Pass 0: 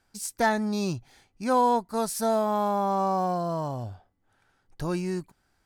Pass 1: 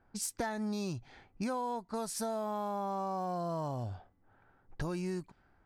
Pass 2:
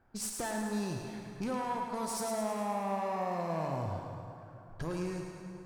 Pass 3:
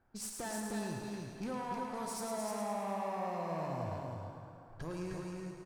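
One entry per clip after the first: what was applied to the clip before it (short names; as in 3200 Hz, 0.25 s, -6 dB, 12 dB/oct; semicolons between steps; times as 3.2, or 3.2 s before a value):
in parallel at 0 dB: limiter -21.5 dBFS, peak gain reduction 8 dB; on the sum: compressor 8:1, threshold -31 dBFS, peak gain reduction 16 dB; low-pass opened by the level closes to 1200 Hz, open at -30 dBFS; gain -2 dB
tube stage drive 33 dB, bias 0.45; on a send: thinning echo 0.107 s, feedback 58%, high-pass 420 Hz, level -6 dB; on the sum: plate-style reverb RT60 3.1 s, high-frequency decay 0.6×, DRR 4 dB; gain +2 dB
echo 0.307 s -4 dB; gain -5 dB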